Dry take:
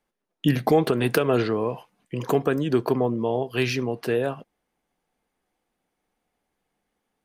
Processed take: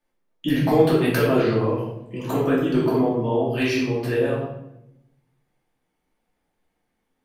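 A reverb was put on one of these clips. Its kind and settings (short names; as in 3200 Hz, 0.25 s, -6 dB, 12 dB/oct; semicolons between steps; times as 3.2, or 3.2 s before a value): shoebox room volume 250 m³, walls mixed, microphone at 2.6 m; gain -6.5 dB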